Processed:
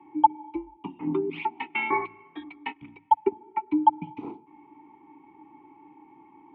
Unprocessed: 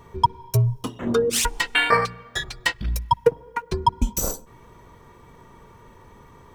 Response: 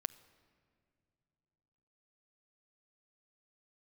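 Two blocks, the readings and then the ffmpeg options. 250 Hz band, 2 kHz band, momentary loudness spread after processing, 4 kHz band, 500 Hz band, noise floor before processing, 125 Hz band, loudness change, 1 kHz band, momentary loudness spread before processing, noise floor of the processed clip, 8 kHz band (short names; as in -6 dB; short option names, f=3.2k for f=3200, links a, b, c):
+1.0 dB, -9.5 dB, 18 LU, -19.5 dB, -8.5 dB, -50 dBFS, -21.5 dB, -4.5 dB, -0.5 dB, 10 LU, -57 dBFS, under -40 dB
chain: -filter_complex "[0:a]highpass=f=170:t=q:w=0.5412,highpass=f=170:t=q:w=1.307,lowpass=f=3.1k:t=q:w=0.5176,lowpass=f=3.1k:t=q:w=0.7071,lowpass=f=3.1k:t=q:w=1.932,afreqshift=-73,asplit=3[a][b][c];[a]bandpass=f=300:t=q:w=8,volume=0dB[d];[b]bandpass=f=870:t=q:w=8,volume=-6dB[e];[c]bandpass=f=2.24k:t=q:w=8,volume=-9dB[f];[d][e][f]amix=inputs=3:normalize=0,volume=7dB"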